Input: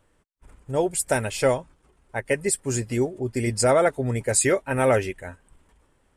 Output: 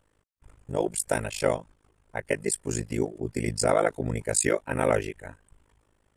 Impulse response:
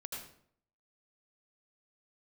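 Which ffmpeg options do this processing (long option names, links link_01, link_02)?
-af "tremolo=f=52:d=1"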